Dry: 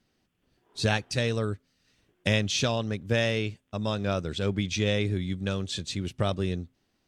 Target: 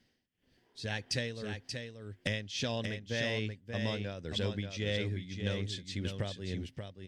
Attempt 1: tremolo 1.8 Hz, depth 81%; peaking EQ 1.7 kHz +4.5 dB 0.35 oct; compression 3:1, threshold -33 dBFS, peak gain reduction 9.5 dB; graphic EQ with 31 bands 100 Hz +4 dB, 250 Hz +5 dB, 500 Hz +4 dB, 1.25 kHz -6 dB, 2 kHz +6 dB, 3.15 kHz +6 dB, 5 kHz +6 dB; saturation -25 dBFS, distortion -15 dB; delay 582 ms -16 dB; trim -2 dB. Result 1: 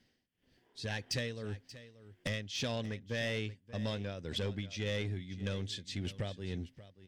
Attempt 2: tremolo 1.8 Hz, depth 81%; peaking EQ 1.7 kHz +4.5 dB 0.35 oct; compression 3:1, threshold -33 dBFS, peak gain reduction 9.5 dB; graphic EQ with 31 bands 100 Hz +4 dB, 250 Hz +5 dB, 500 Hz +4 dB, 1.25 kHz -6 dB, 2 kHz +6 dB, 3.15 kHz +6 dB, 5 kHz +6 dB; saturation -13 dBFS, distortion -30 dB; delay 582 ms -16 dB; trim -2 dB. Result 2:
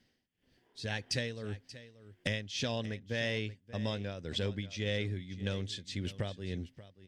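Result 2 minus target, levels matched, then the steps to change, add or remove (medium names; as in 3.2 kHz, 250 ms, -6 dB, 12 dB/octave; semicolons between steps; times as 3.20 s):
echo-to-direct -9.5 dB
change: delay 582 ms -6.5 dB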